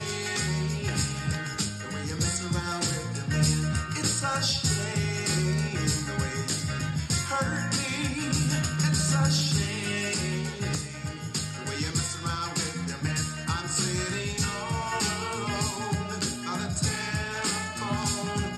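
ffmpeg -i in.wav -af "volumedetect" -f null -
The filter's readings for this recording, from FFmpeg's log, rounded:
mean_volume: -28.6 dB
max_volume: -12.1 dB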